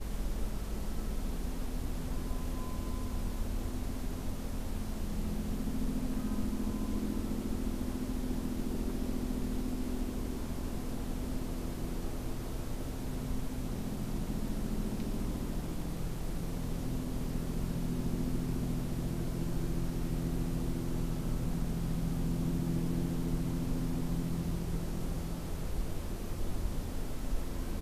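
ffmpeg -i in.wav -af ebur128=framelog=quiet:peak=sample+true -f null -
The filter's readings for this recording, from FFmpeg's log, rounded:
Integrated loudness:
  I:         -37.4 LUFS
  Threshold: -47.4 LUFS
Loudness range:
  LRA:         4.4 LU
  Threshold: -57.2 LUFS
  LRA low:   -39.4 LUFS
  LRA high:  -35.0 LUFS
Sample peak:
  Peak:      -19.9 dBFS
True peak:
  Peak:      -19.9 dBFS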